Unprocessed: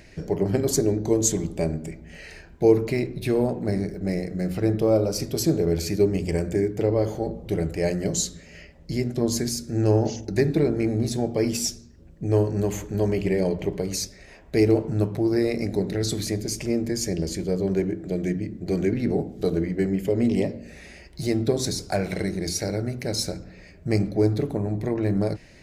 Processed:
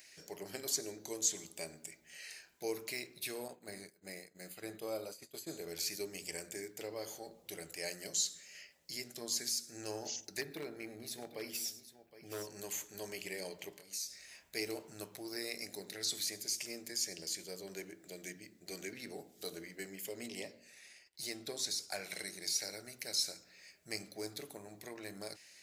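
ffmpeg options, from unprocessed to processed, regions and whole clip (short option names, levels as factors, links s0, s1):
-filter_complex "[0:a]asettb=1/sr,asplit=3[s0][s1][s2];[s0]atrim=end=3.484[s3];[s1]atrim=start=3.48:end=5.68,asetpts=PTS-STARTPTS,afade=t=in:d=0.004:c=qsin,afade=t=out:st=2.196:d=0.004:c=qsin,acrossover=split=2700[s4][s5];[s5]acompressor=threshold=0.00631:ratio=4:attack=1:release=60[s6];[s4][s6]amix=inputs=2:normalize=0,agate=range=0.0224:threshold=0.0562:ratio=3:release=100:detection=peak,asuperstop=centerf=5500:order=8:qfactor=6.6[s7];[s2]atrim=start=5.676[s8];[s3][s7]acrossfade=d=0.004:c1=hsin:c2=qsin[s9];[s9][s8]acrossfade=d=0.004:c1=qsin:c2=hsin,asettb=1/sr,asplit=3[s10][s11][s12];[s10]atrim=end=10.414[s13];[s11]atrim=start=10.41:end=12.47,asetpts=PTS-STARTPTS,afade=t=in:d=0.004:c=qsin,afade=t=out:st=2.056:d=0.004:c=qsin,equalizer=f=7300:w=0.74:g=-13,aecho=1:1:102|766:0.1|0.188,atrim=end_sample=90846,asoftclip=type=hard:threshold=0.224[s14];[s12]atrim=start=12.466[s15];[s13][s14]acrossfade=d=0.004:c1=hsin:c2=qsin[s16];[s16][s15]acrossfade=d=0.004:c1=qsin:c2=hsin,asettb=1/sr,asplit=3[s17][s18][s19];[s17]atrim=end=13.734[s20];[s18]atrim=start=13.73:end=14.55,asetpts=PTS-STARTPTS,afade=t=in:d=0.004:c=qsin,afade=t=out:st=0.816:d=0.004:c=qsin,asubboost=boost=11.5:cutoff=210,acompressor=threshold=0.02:ratio=12:attack=3.2:release=140:knee=1:detection=peak,asplit=2[s21][s22];[s22]adelay=25,volume=0.596[s23];[s21][s23]amix=inputs=2:normalize=0,atrim=end_sample=36162[s24];[s19]atrim=start=14.546[s25];[s20][s24]acrossfade=d=0.004:c1=hsin:c2=qsin[s26];[s26][s25]acrossfade=d=0.004:c1=qsin:c2=hsin,asettb=1/sr,asplit=3[s27][s28][s29];[s27]atrim=end=20.264[s30];[s28]atrim=start=20.26:end=22.14,asetpts=PTS-STARTPTS,afade=t=in:d=0.004:c=qsin,afade=t=out:st=1.876:d=0.004:c=qsin,agate=range=0.0224:threshold=0.00891:ratio=3:release=100:detection=peak,highshelf=f=6000:g=-5.5[s31];[s29]atrim=start=22.136[s32];[s30][s31]acrossfade=d=0.004:c1=hsin:c2=qsin[s33];[s33][s32]acrossfade=d=0.004:c1=qsin:c2=hsin,acrossover=split=4900[s34][s35];[s35]acompressor=threshold=0.00891:ratio=4:attack=1:release=60[s36];[s34][s36]amix=inputs=2:normalize=0,aderivative,volume=1.33"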